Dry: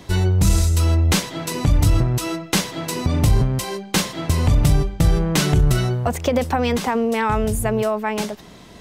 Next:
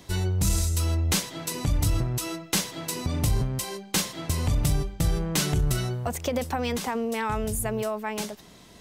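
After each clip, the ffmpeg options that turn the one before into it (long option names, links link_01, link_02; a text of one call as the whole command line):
ffmpeg -i in.wav -af "highshelf=frequency=4500:gain=8,volume=-8.5dB" out.wav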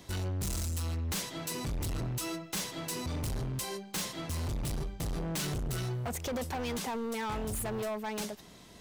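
ffmpeg -i in.wav -af "asoftclip=type=hard:threshold=-29dB,volume=-3dB" out.wav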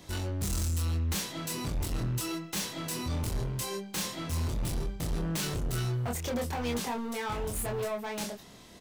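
ffmpeg -i in.wav -filter_complex "[0:a]asplit=2[link_01][link_02];[link_02]adelay=25,volume=-3dB[link_03];[link_01][link_03]amix=inputs=2:normalize=0" out.wav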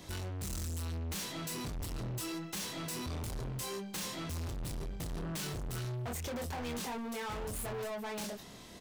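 ffmpeg -i in.wav -af "asoftclip=type=tanh:threshold=-37.5dB,volume=1dB" out.wav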